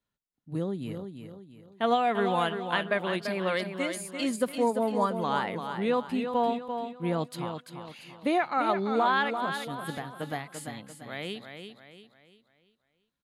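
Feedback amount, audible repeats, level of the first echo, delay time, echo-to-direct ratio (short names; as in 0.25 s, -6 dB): 40%, 4, -7.5 dB, 0.342 s, -6.5 dB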